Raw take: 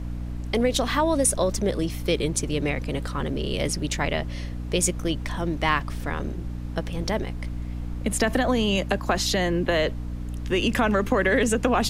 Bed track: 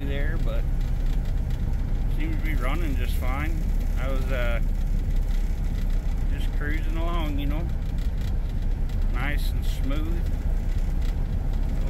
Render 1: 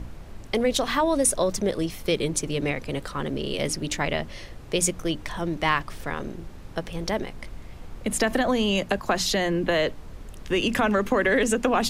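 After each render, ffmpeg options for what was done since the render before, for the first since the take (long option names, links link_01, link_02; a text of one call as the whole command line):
ffmpeg -i in.wav -af "bandreject=frequency=60:width_type=h:width=6,bandreject=frequency=120:width_type=h:width=6,bandreject=frequency=180:width_type=h:width=6,bandreject=frequency=240:width_type=h:width=6,bandreject=frequency=300:width_type=h:width=6" out.wav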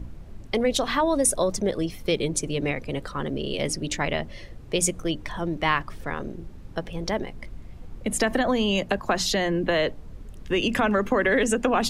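ffmpeg -i in.wav -af "afftdn=noise_reduction=8:noise_floor=-42" out.wav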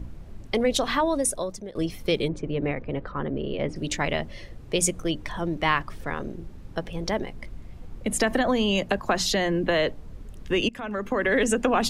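ffmpeg -i in.wav -filter_complex "[0:a]asettb=1/sr,asplit=3[link_01][link_02][link_03];[link_01]atrim=end=2.284[link_04];[link_02]atrim=start=2.28:end=3.76,asetpts=PTS-STARTPTS,afade=type=in:duration=0.004:curve=qsin,afade=type=out:start_time=1.476:duration=0.004:curve=qsin,lowpass=1900[link_05];[link_03]atrim=start=3.756[link_06];[link_04][link_05]acrossfade=duration=0.004:curve1=hsin:curve2=qsin[link_07];[link_07][link_06]acrossfade=duration=0.004:curve1=qsin:curve2=hsin,asplit=3[link_08][link_09][link_10];[link_08]atrim=end=1.75,asetpts=PTS-STARTPTS,afade=type=out:start_time=0.94:duration=0.81:silence=0.125893[link_11];[link_09]atrim=start=1.75:end=10.69,asetpts=PTS-STARTPTS,afade=type=in:duration=0.004:curve=hsin:silence=0.125893,afade=type=out:start_time=8.936:duration=0.004:curve=hsin:silence=0.0794328[link_12];[link_10]atrim=start=10.69,asetpts=PTS-STARTPTS,afade=type=in:duration=0.73:silence=0.0794328[link_13];[link_11][link_12][link_13]concat=n=3:v=0:a=1" out.wav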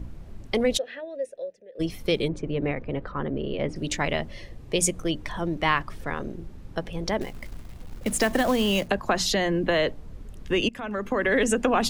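ffmpeg -i in.wav -filter_complex "[0:a]asplit=3[link_01][link_02][link_03];[link_01]afade=type=out:start_time=0.77:duration=0.02[link_04];[link_02]asplit=3[link_05][link_06][link_07];[link_05]bandpass=frequency=530:width_type=q:width=8,volume=0dB[link_08];[link_06]bandpass=frequency=1840:width_type=q:width=8,volume=-6dB[link_09];[link_07]bandpass=frequency=2480:width_type=q:width=8,volume=-9dB[link_10];[link_08][link_09][link_10]amix=inputs=3:normalize=0,afade=type=in:start_time=0.77:duration=0.02,afade=type=out:start_time=1.79:duration=0.02[link_11];[link_03]afade=type=in:start_time=1.79:duration=0.02[link_12];[link_04][link_11][link_12]amix=inputs=3:normalize=0,asettb=1/sr,asplit=3[link_13][link_14][link_15];[link_13]atrim=end=4.394[link_16];[link_14]atrim=start=4.39:end=4.96,asetpts=PTS-STARTPTS,afade=type=in:duration=0.004:curve=qsin,afade=type=out:start_time=0.566:duration=0.004:curve=qsin,asuperstop=centerf=1400:order=4:qfactor=7.4[link_17];[link_15]atrim=start=4.956[link_18];[link_16][link_17]acrossfade=duration=0.004:curve1=hsin:curve2=qsin[link_19];[link_19][link_18]acrossfade=duration=0.004:curve1=qsin:curve2=hsin,asettb=1/sr,asplit=3[link_20][link_21][link_22];[link_20]atrim=end=7.214[link_23];[link_21]atrim=start=7.21:end=8.88,asetpts=PTS-STARTPTS,afade=type=in:duration=0.004:curve=qsin,afade=type=out:start_time=1.666:duration=0.004:curve=qsin,acrusher=bits=4:mode=log:mix=0:aa=0.000001[link_24];[link_22]atrim=start=8.876[link_25];[link_23][link_24]acrossfade=duration=0.004:curve1=hsin:curve2=qsin[link_26];[link_26][link_25]acrossfade=duration=0.004:curve1=qsin:curve2=hsin" out.wav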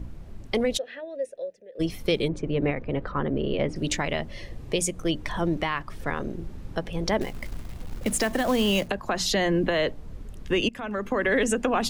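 ffmpeg -i in.wav -af "dynaudnorm=framelen=480:gausssize=11:maxgain=5.5dB,alimiter=limit=-14dB:level=0:latency=1:release=422" out.wav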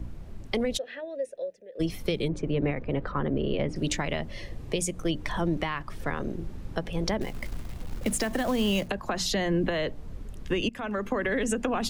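ffmpeg -i in.wav -filter_complex "[0:a]acrossover=split=230[link_01][link_02];[link_02]acompressor=threshold=-26dB:ratio=6[link_03];[link_01][link_03]amix=inputs=2:normalize=0" out.wav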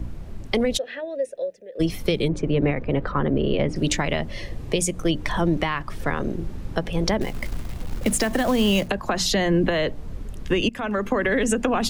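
ffmpeg -i in.wav -af "volume=6dB" out.wav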